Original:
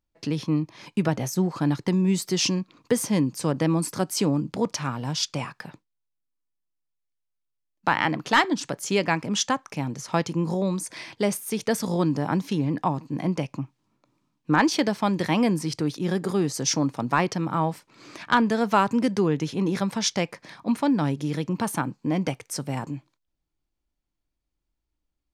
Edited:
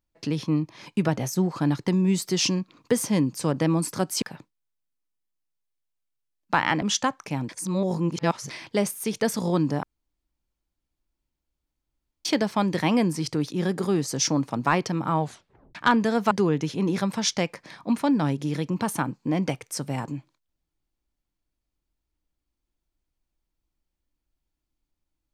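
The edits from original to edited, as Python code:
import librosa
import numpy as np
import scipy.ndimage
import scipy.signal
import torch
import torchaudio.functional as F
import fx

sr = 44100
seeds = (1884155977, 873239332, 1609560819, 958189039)

y = fx.edit(x, sr, fx.cut(start_s=4.22, length_s=1.34),
    fx.cut(start_s=8.16, length_s=1.12),
    fx.reverse_span(start_s=9.95, length_s=1.01),
    fx.room_tone_fill(start_s=12.29, length_s=2.42),
    fx.tape_stop(start_s=17.66, length_s=0.55),
    fx.cut(start_s=18.77, length_s=0.33), tone=tone)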